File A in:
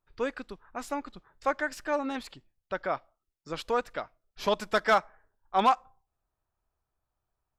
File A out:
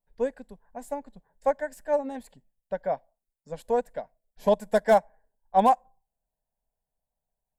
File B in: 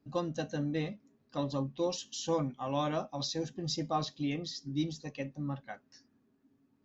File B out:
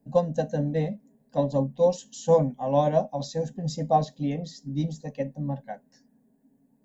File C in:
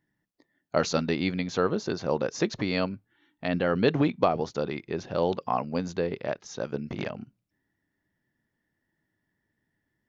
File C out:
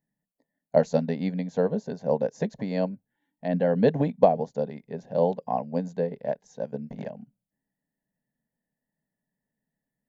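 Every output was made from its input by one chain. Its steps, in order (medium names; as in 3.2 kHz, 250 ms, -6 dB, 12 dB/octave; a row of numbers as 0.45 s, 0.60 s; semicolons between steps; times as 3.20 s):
high-order bell 3.7 kHz -13.5 dB; static phaser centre 340 Hz, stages 6; upward expansion 1.5:1, over -40 dBFS; normalise loudness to -27 LUFS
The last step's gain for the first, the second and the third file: +8.5 dB, +15.0 dB, +7.5 dB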